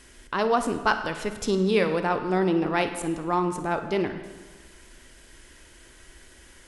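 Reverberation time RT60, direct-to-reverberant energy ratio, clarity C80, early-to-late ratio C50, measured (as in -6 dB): 1.4 s, 8.0 dB, 11.0 dB, 8.5 dB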